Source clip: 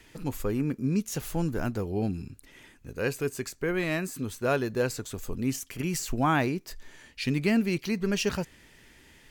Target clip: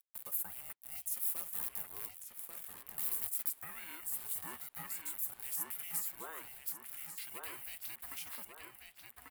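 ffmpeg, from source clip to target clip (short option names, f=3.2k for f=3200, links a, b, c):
-filter_complex "[0:a]highpass=f=670:w=0.5412,highpass=f=670:w=1.3066,acrusher=bits=7:mix=0:aa=0.000001,flanger=delay=1.2:depth=7.9:regen=-83:speed=1.5:shape=sinusoidal,asettb=1/sr,asplit=3[a][b][c];[a]atrim=end=1.174[d];[b]atrim=start=1.17:end=3.5,asetpts=PTS-STARTPTS,afade=t=in:d=0.004:c=qsin,afade=t=out:st=2.326:d=0.004:c=qsin,aeval=exprs='(mod(75*val(0)+1,2)-1)/75':c=same[e];[c]atrim=start=3.496[f];[d][e]acrossfade=d=0.004:c1=hsin:c2=qsin[g];[g][f]acrossfade=d=0.004:c1=qsin:c2=hsin,acompressor=threshold=-50dB:ratio=2.5,aexciter=amount=12.8:drive=2.7:freq=8.7k,aeval=exprs='val(0)*sin(2*PI*330*n/s)':c=same,asplit=2[h][i];[i]adelay=1141,lowpass=f=3.6k:p=1,volume=-3dB,asplit=2[j][k];[k]adelay=1141,lowpass=f=3.6k:p=1,volume=0.47,asplit=2[l][m];[m]adelay=1141,lowpass=f=3.6k:p=1,volume=0.47,asplit=2[n][o];[o]adelay=1141,lowpass=f=3.6k:p=1,volume=0.47,asplit=2[p][q];[q]adelay=1141,lowpass=f=3.6k:p=1,volume=0.47,asplit=2[r][s];[s]adelay=1141,lowpass=f=3.6k:p=1,volume=0.47[t];[h][j][l][n][p][r][t]amix=inputs=7:normalize=0"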